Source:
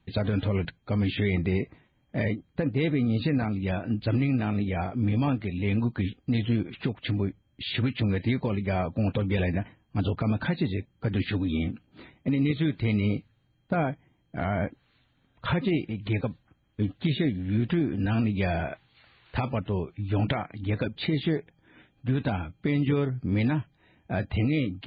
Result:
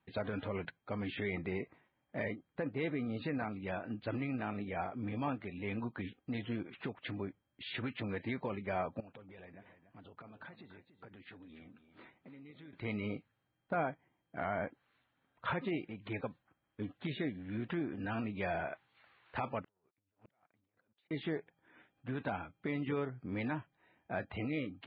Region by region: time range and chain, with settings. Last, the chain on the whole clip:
9–12.73 compressor 5:1, threshold -41 dBFS + echo 0.288 s -12 dB
19.64–21.11 sample leveller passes 3 + negative-ratio compressor -27 dBFS, ratio -0.5 + flipped gate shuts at -31 dBFS, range -40 dB
whole clip: LPF 1300 Hz 12 dB/oct; tilt +4.5 dB/oct; gain -3 dB

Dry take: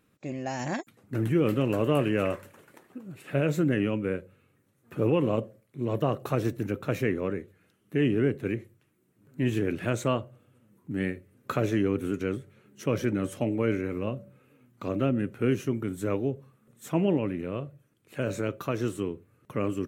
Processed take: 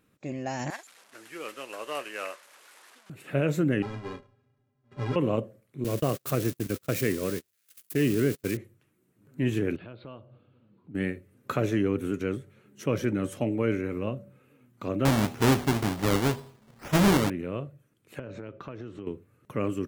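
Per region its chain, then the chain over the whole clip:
0.7–3.1 delta modulation 64 kbps, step -39.5 dBFS + HPF 860 Hz + upward expander, over -43 dBFS
3.82–5.16 half-waves squared off + tape spacing loss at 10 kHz 24 dB + metallic resonator 120 Hz, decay 0.21 s, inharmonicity 0.03
5.84–8.57 switching spikes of -25 dBFS + gate -33 dBFS, range -36 dB + bell 880 Hz -6.5 dB 0.42 oct
9.76–10.95 steep low-pass 4600 Hz 96 dB/oct + bell 1900 Hz -8.5 dB 0.39 oct + compressor 2.5:1, threshold -48 dBFS
15.05–17.3 half-waves squared off + de-hum 81.47 Hz, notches 16 + decimation with a swept rate 14×, swing 60% 2 Hz
18.19–19.07 air absorption 210 m + compressor 5:1, threshold -36 dBFS
whole clip: dry

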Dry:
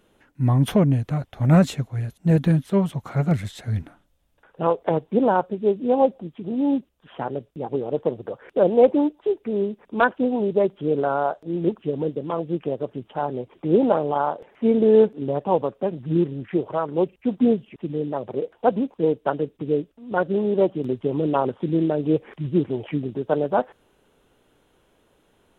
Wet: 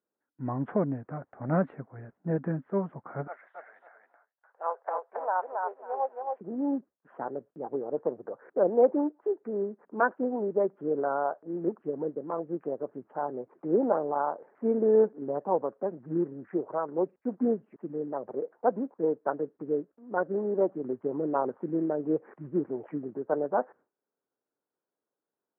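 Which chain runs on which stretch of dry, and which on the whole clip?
3.27–6.41 HPF 670 Hz 24 dB/oct + feedback echo 0.273 s, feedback 20%, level -3.5 dB
whole clip: steep low-pass 1700 Hz 36 dB/oct; gate with hold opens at -46 dBFS; HPF 250 Hz 12 dB/oct; gain -6 dB

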